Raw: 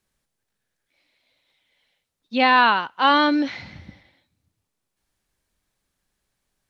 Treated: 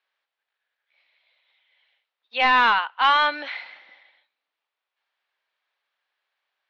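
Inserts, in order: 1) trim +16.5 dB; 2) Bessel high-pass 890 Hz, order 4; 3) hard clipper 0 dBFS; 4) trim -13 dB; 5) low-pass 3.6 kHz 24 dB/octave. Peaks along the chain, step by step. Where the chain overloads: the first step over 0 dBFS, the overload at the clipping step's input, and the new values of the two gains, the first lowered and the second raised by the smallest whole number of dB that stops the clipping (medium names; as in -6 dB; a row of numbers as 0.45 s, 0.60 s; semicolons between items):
+12.0 dBFS, +9.5 dBFS, 0.0 dBFS, -13.0 dBFS, -11.0 dBFS; step 1, 9.5 dB; step 1 +6.5 dB, step 4 -3 dB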